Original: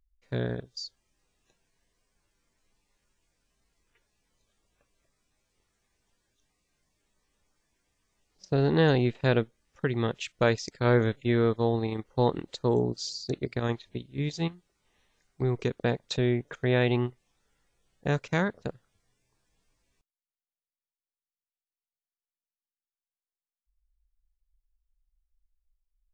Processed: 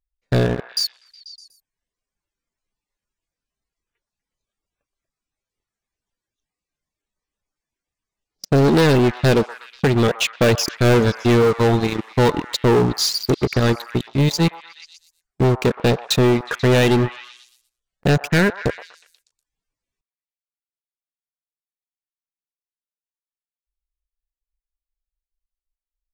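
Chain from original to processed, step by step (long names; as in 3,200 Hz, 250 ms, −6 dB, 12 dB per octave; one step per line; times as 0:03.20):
phase distortion by the signal itself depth 0.13 ms
reverb reduction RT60 1 s
leveller curve on the samples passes 5
on a send: echo through a band-pass that steps 122 ms, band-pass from 980 Hz, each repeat 0.7 octaves, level −9 dB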